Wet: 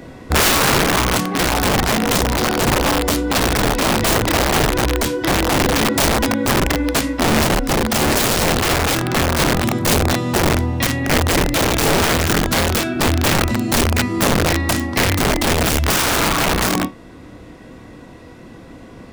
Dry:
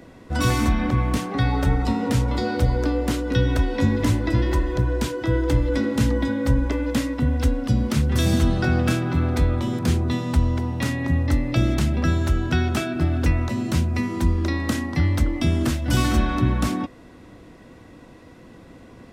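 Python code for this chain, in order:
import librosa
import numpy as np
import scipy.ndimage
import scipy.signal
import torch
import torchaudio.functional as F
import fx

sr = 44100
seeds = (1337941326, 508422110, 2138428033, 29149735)

y = fx.room_flutter(x, sr, wall_m=4.6, rt60_s=0.2)
y = (np.mod(10.0 ** (16.5 / 20.0) * y + 1.0, 2.0) - 1.0) / 10.0 ** (16.5 / 20.0)
y = fx.rider(y, sr, range_db=10, speed_s=2.0)
y = y * 10.0 ** (5.5 / 20.0)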